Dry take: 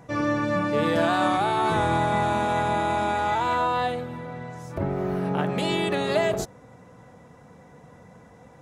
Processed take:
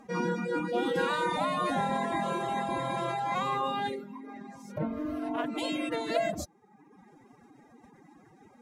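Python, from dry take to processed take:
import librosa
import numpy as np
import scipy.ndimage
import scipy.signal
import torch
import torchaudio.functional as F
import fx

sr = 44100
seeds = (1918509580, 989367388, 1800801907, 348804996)

y = fx.pitch_keep_formants(x, sr, semitones=8.5)
y = fx.dereverb_blind(y, sr, rt60_s=1.0)
y = F.gain(torch.from_numpy(y), -4.0).numpy()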